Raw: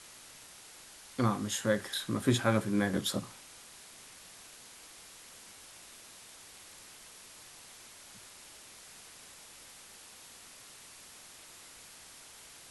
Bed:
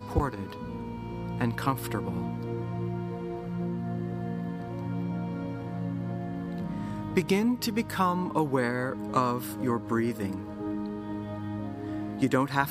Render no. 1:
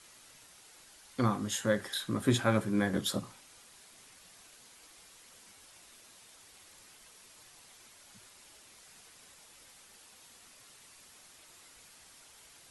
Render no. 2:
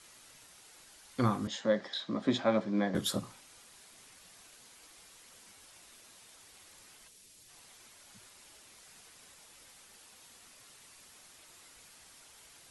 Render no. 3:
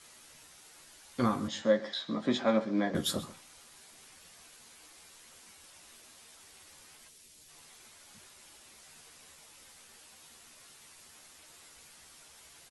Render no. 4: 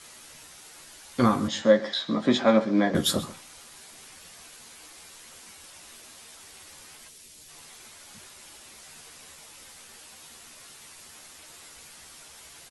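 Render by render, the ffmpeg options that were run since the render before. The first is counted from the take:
-af "afftdn=nr=6:nf=-53"
-filter_complex "[0:a]asettb=1/sr,asplit=3[a][b][c];[a]atrim=end=1.474[d];[b]atrim=start=1.47:end=2.95,asetpts=PTS-STARTPTS,afade=t=in:d=0.004:c=qsin,afade=t=out:st=1.476:d=0.004:c=qsin,highpass=f=170:w=0.5412,highpass=f=170:w=1.3066,equalizer=f=390:t=q:w=4:g=-5,equalizer=f=630:t=q:w=4:g=6,equalizer=f=1.5k:t=q:w=4:g=-8,equalizer=f=2.7k:t=q:w=4:g=-6,lowpass=f=5.2k:w=0.5412,lowpass=f=5.2k:w=1.3066[e];[c]atrim=start=2.946[f];[d][e]acrossfade=d=0.004:c1=hsin:c2=qsin[g];[g][f]acrossfade=d=0.004:c1=qsin:c2=hsin,asplit=3[h][i][j];[h]afade=t=out:st=7.07:d=0.02[k];[i]equalizer=f=1.1k:w=0.64:g=-12.5,afade=t=in:st=7.07:d=0.02,afade=t=out:st=7.48:d=0.02[l];[j]afade=t=in:st=7.48:d=0.02[m];[k][l][m]amix=inputs=3:normalize=0"
-filter_complex "[0:a]asplit=2[a][b];[b]adelay=13,volume=-5dB[c];[a][c]amix=inputs=2:normalize=0,aecho=1:1:133:0.126"
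-af "volume=7.5dB"

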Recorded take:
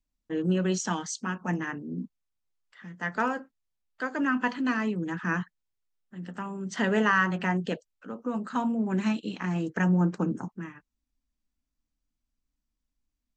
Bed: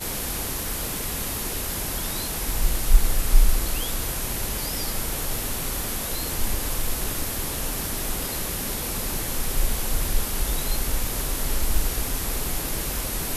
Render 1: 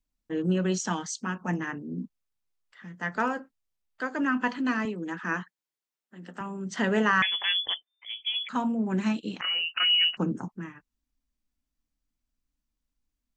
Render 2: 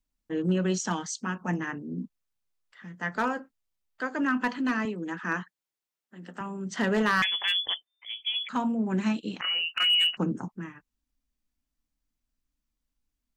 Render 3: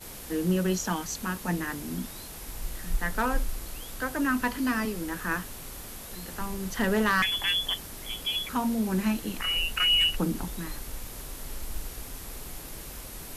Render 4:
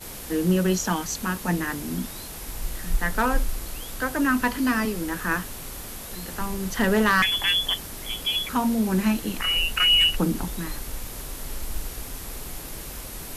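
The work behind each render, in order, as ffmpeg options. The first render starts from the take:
-filter_complex "[0:a]asettb=1/sr,asplit=3[a][b][c];[a]atrim=end=4.854[d];[b]atrim=start=4.85:end=6.41,asetpts=PTS-STARTPTS,afade=t=in:d=0.004:c=qsin,afade=t=out:st=1.556:d=0.004:c=qsin,highpass=250[e];[c]atrim=start=6.406[f];[d][e]acrossfade=d=0.004:c1=hsin:c2=qsin[g];[g][f]acrossfade=d=0.004:c1=qsin:c2=hsin,asettb=1/sr,asplit=3[h][i][j];[h]atrim=end=7.224[k];[i]atrim=start=7.22:end=8.49,asetpts=PTS-STARTPTS,afade=t=in:d=0.004:c=qsin,afade=t=out:st=1.266:d=0.004:c=qsin,lowpass=f=3.1k:t=q:w=0.5098,lowpass=f=3.1k:t=q:w=0.6013,lowpass=f=3.1k:t=q:w=0.9,lowpass=f=3.1k:t=q:w=2.563,afreqshift=-3600[l];[j]atrim=start=8.486[m];[k][l]acrossfade=d=0.004:c1=hsin:c2=qsin[n];[n][m]acrossfade=d=0.004:c1=qsin:c2=hsin,asettb=1/sr,asplit=3[o][p][q];[o]atrim=end=9.414[r];[p]atrim=start=9.41:end=10.17,asetpts=PTS-STARTPTS,afade=t=in:d=0.004:c=qsin,afade=t=out:st=0.756:d=0.004:c=qsin,lowpass=f=2.6k:t=q:w=0.5098,lowpass=f=2.6k:t=q:w=0.6013,lowpass=f=2.6k:t=q:w=0.9,lowpass=f=2.6k:t=q:w=2.563,afreqshift=-3100[s];[q]atrim=start=10.166[t];[r][s]acrossfade=d=0.004:c1=hsin:c2=qsin[u];[u][t]acrossfade=d=0.004:c1=qsin:c2=hsin"
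-af "asoftclip=type=hard:threshold=-18dB"
-filter_complex "[1:a]volume=-13dB[a];[0:a][a]amix=inputs=2:normalize=0"
-af "volume=4.5dB"

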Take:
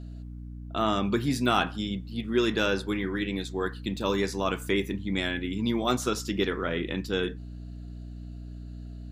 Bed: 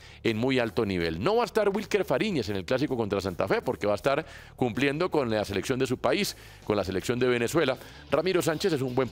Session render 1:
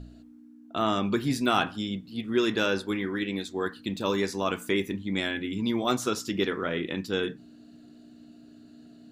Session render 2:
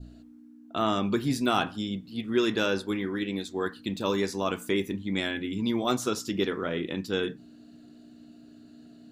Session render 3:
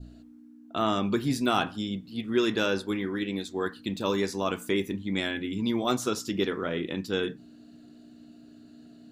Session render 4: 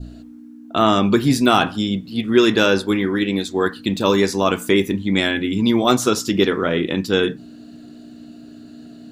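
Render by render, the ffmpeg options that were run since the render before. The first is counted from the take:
-af "bandreject=f=60:t=h:w=4,bandreject=f=120:t=h:w=4,bandreject=f=180:t=h:w=4"
-af "adynamicequalizer=threshold=0.00708:dfrequency=1900:dqfactor=0.96:tfrequency=1900:tqfactor=0.96:attack=5:release=100:ratio=0.375:range=2:mode=cutabove:tftype=bell"
-af anull
-af "volume=11dB,alimiter=limit=-2dB:level=0:latency=1"

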